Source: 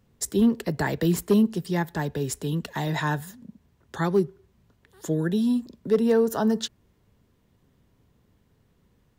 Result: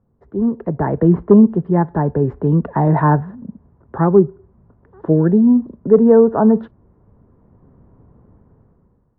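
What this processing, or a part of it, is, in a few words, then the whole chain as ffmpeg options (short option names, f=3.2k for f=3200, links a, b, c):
action camera in a waterproof case: -af "lowpass=f=1.2k:w=0.5412,lowpass=f=1.2k:w=1.3066,dynaudnorm=f=210:g=7:m=15dB" -ar 22050 -c:a aac -b:a 96k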